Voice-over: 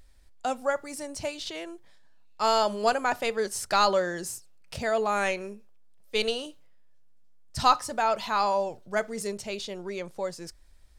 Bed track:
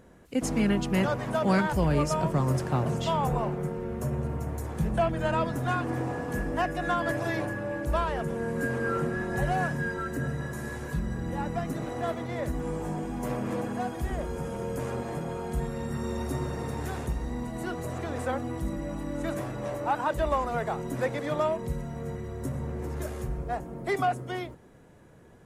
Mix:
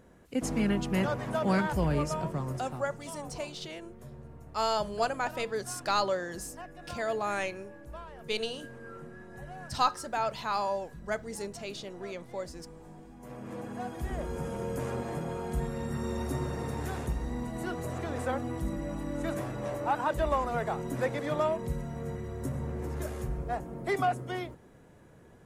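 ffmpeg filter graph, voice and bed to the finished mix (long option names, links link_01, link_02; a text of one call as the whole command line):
ffmpeg -i stem1.wav -i stem2.wav -filter_complex "[0:a]adelay=2150,volume=-5.5dB[link_01];[1:a]volume=12.5dB,afade=type=out:start_time=1.85:duration=1:silence=0.199526,afade=type=in:start_time=13.19:duration=1.21:silence=0.16788[link_02];[link_01][link_02]amix=inputs=2:normalize=0" out.wav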